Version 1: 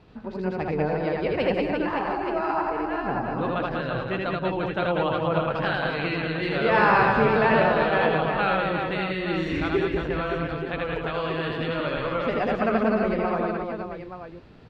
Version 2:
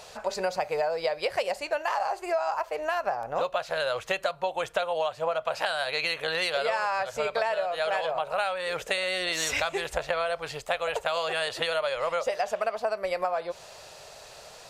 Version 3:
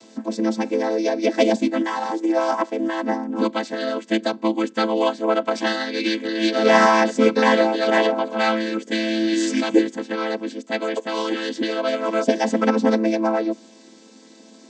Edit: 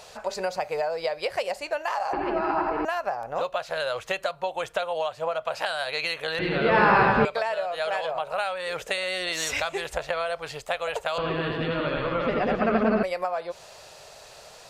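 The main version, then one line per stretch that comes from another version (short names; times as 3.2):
2
2.13–2.85 from 1
6.39–7.25 from 1
11.18–13.03 from 1
not used: 3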